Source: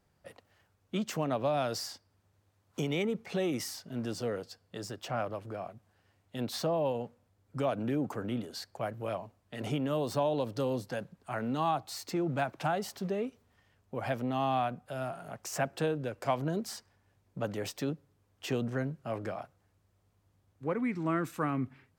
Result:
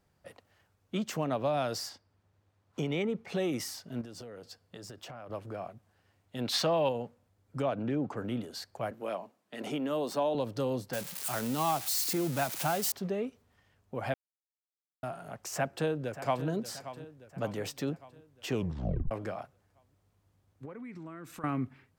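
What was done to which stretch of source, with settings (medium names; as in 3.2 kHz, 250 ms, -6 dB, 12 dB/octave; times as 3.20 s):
1.89–3.28 s: treble shelf 6.5 kHz -11 dB
4.01–5.30 s: compression 16:1, threshold -41 dBFS
6.45–6.89 s: peaking EQ 2.8 kHz +10.5 dB 2.8 oct
7.62–8.17 s: distance through air 89 m
8.91–10.35 s: high-pass 190 Hz 24 dB/octave
10.93–12.92 s: zero-crossing glitches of -26 dBFS
14.14–15.03 s: mute
15.55–16.46 s: echo throw 580 ms, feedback 55%, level -13 dB
18.52 s: tape stop 0.59 s
20.65–21.44 s: compression 8:1, threshold -41 dBFS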